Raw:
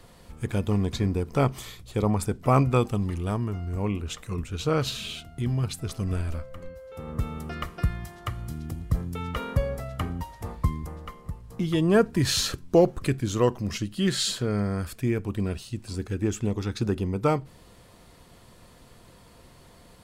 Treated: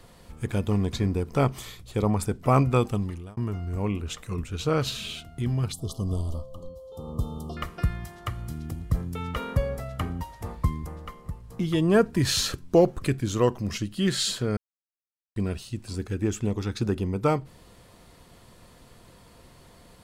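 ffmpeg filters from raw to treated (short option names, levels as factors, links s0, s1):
-filter_complex "[0:a]asettb=1/sr,asplit=3[s0][s1][s2];[s0]atrim=end=5.724[s3];[s1]atrim=start=5.72:end=7.57,asetpts=PTS-STARTPTS,afade=t=in:d=0.004:c=qsin,afade=t=out:st=1.846:d=0.004:c=qsin,asuperstop=centerf=1900:order=20:qfactor=1.1[s4];[s2]atrim=start=7.566[s5];[s3][s4]acrossfade=d=0.004:c1=hsin:c2=qsin[s6];[s6][s5]acrossfade=d=0.004:c1=qsin:c2=hsin,asplit=4[s7][s8][s9][s10];[s7]atrim=end=3.37,asetpts=PTS-STARTPTS,afade=t=out:st=2.96:d=0.41[s11];[s8]atrim=start=3.37:end=14.57,asetpts=PTS-STARTPTS,afade=t=in:d=0.004:c=hsin,afade=t=out:st=11.196:d=0.004:c=hsin[s12];[s9]atrim=start=14.57:end=15.36,asetpts=PTS-STARTPTS,volume=0[s13];[s10]atrim=start=15.36,asetpts=PTS-STARTPTS,afade=t=in:d=0.004:c=hsin[s14];[s11][s12][s13][s14]concat=n=4:v=0:a=1"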